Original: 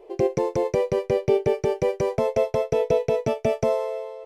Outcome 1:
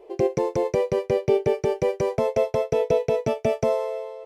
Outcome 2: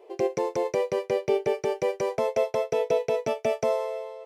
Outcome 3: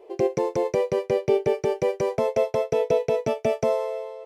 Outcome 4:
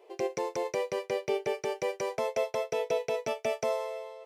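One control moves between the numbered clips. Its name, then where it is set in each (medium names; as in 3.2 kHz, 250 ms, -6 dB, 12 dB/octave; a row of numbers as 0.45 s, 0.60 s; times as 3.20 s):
high-pass, cutoff frequency: 40 Hz, 510 Hz, 170 Hz, 1.3 kHz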